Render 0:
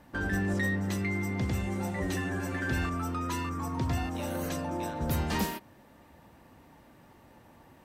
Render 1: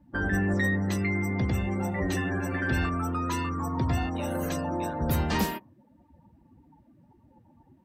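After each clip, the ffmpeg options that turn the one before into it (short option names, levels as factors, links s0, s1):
-af "afftdn=nr=23:nf=-47,volume=1.5"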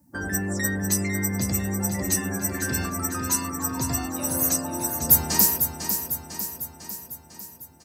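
-filter_complex "[0:a]highpass=74,aexciter=amount=11.4:drive=5.3:freq=5000,asplit=2[s0][s1];[s1]aecho=0:1:500|1000|1500|2000|2500|3000|3500:0.422|0.24|0.137|0.0781|0.0445|0.0254|0.0145[s2];[s0][s2]amix=inputs=2:normalize=0,volume=0.794"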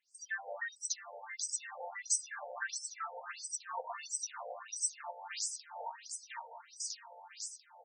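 -af "bandreject=f=207.5:t=h:w=4,bandreject=f=415:t=h:w=4,bandreject=f=622.5:t=h:w=4,bandreject=f=830:t=h:w=4,bandreject=f=1037.5:t=h:w=4,bandreject=f=1245:t=h:w=4,bandreject=f=1452.5:t=h:w=4,bandreject=f=1660:t=h:w=4,bandreject=f=1867.5:t=h:w=4,bandreject=f=2075:t=h:w=4,bandreject=f=2282.5:t=h:w=4,bandreject=f=2490:t=h:w=4,bandreject=f=2697.5:t=h:w=4,bandreject=f=2905:t=h:w=4,bandreject=f=3112.5:t=h:w=4,bandreject=f=3320:t=h:w=4,bandreject=f=3527.5:t=h:w=4,bandreject=f=3735:t=h:w=4,bandreject=f=3942.5:t=h:w=4,bandreject=f=4150:t=h:w=4,bandreject=f=4357.5:t=h:w=4,bandreject=f=4565:t=h:w=4,bandreject=f=4772.5:t=h:w=4,bandreject=f=4980:t=h:w=4,bandreject=f=5187.5:t=h:w=4,bandreject=f=5395:t=h:w=4,acompressor=threshold=0.0251:ratio=6,afftfilt=real='re*between(b*sr/1024,630*pow(7000/630,0.5+0.5*sin(2*PI*1.5*pts/sr))/1.41,630*pow(7000/630,0.5+0.5*sin(2*PI*1.5*pts/sr))*1.41)':imag='im*between(b*sr/1024,630*pow(7000/630,0.5+0.5*sin(2*PI*1.5*pts/sr))/1.41,630*pow(7000/630,0.5+0.5*sin(2*PI*1.5*pts/sr))*1.41)':win_size=1024:overlap=0.75,volume=1.88"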